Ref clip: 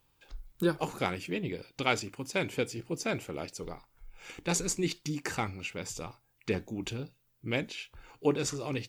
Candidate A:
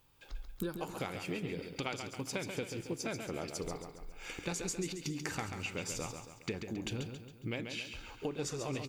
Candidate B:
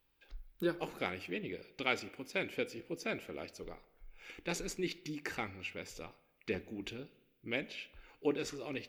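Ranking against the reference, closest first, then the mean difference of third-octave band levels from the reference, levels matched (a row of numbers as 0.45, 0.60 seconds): B, A; 3.0, 7.0 decibels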